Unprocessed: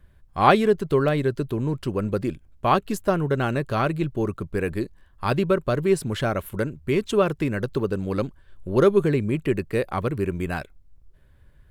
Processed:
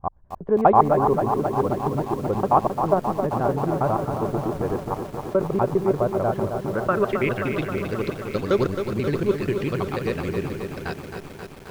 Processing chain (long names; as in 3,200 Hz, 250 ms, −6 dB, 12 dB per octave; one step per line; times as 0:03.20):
slices reordered back to front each 81 ms, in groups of 5
low-pass filter sweep 870 Hz → 5,300 Hz, 0:06.56–0:07.84
feedback echo at a low word length 266 ms, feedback 80%, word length 7 bits, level −7 dB
level −2.5 dB